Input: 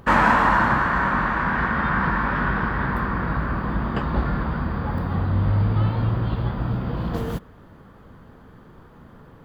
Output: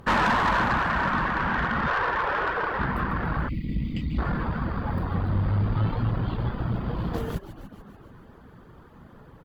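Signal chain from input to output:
0:01.87–0:02.79: low shelf with overshoot 320 Hz −12.5 dB, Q 3
on a send: echo with shifted repeats 145 ms, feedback 63%, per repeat −65 Hz, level −10 dB
0:03.49–0:04.18: on the sum: gain on a spectral selection 330–1,900 Hz −29 dB
reverb reduction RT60 0.55 s
tube saturation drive 17 dB, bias 0.4

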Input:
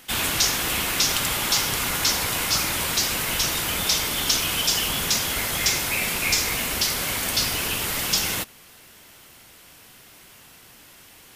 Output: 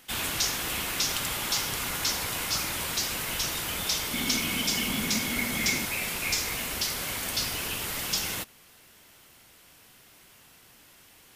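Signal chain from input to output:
0:04.13–0:05.85: hollow resonant body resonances 230/2,200 Hz, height 15 dB, ringing for 45 ms
level −6.5 dB

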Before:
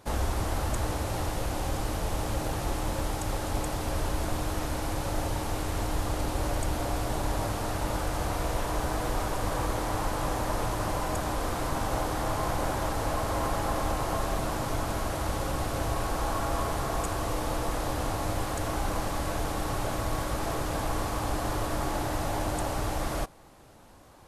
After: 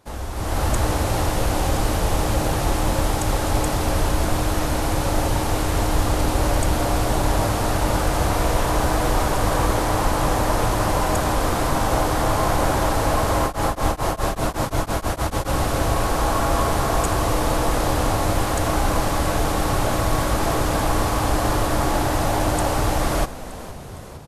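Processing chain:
automatic gain control gain up to 13 dB
echo with shifted repeats 460 ms, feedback 63%, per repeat −57 Hz, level −15.5 dB
0:13.37–0:15.48: tremolo along a rectified sine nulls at 4.1 Hz → 7.6 Hz
level −3 dB

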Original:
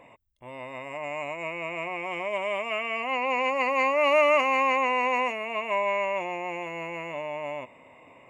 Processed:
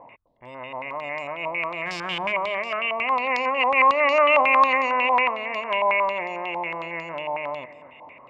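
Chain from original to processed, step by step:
0:01.85–0:02.31: spectral envelope flattened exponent 0.3
delay that swaps between a low-pass and a high-pass 256 ms, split 800 Hz, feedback 52%, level −13 dB
low-pass on a step sequencer 11 Hz 900–5,000 Hz

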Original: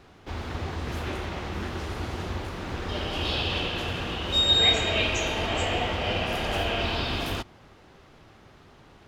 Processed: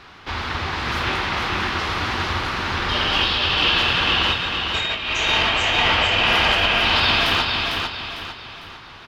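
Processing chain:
flat-topped bell 2,200 Hz +11 dB 2.9 octaves
compressor whose output falls as the input rises −21 dBFS, ratio −0.5
repeating echo 451 ms, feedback 39%, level −4 dB

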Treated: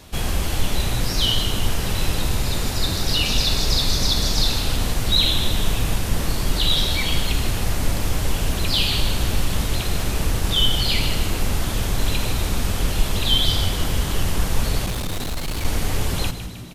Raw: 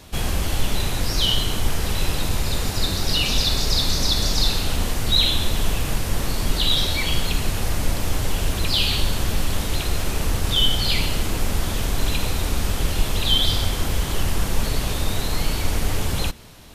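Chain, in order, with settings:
0:14.86–0:15.65: hard clipping −22.5 dBFS, distortion −20 dB
echo with shifted repeats 156 ms, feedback 56%, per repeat −64 Hz, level −11 dB

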